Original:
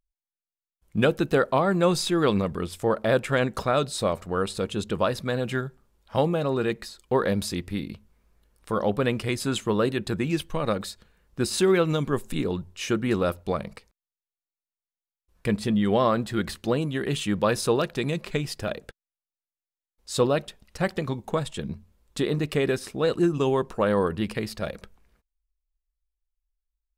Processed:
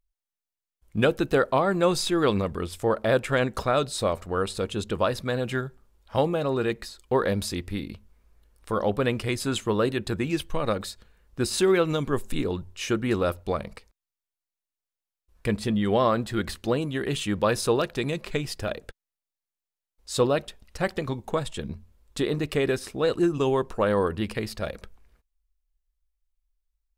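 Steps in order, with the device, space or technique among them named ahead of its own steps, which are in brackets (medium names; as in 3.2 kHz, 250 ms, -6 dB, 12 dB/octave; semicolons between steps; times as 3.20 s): low shelf boost with a cut just above (bass shelf 67 Hz +6.5 dB; peaking EQ 170 Hz -5 dB 0.7 oct)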